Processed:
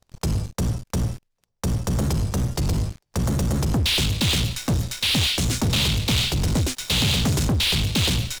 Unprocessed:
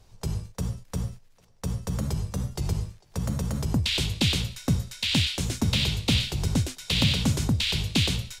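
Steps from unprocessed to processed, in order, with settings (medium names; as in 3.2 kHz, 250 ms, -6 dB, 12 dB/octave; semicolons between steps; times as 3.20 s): waveshaping leveller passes 5; trim -7.5 dB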